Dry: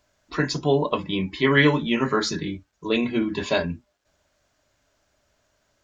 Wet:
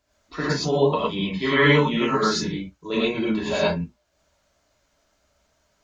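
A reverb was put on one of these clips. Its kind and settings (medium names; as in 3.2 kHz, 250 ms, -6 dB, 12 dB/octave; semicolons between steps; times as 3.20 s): gated-style reverb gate 140 ms rising, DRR -7 dB; trim -6.5 dB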